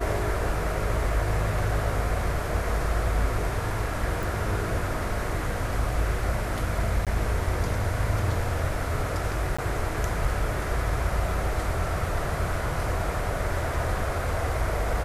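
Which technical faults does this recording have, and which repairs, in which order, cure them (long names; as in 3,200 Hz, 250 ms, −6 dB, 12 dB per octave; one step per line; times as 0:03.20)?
0:04.23: click
0:07.05–0:07.07: drop-out 17 ms
0:09.57–0:09.59: drop-out 15 ms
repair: click removal
repair the gap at 0:07.05, 17 ms
repair the gap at 0:09.57, 15 ms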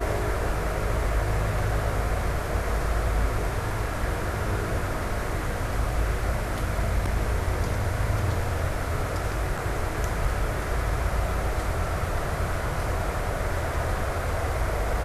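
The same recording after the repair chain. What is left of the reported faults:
none of them is left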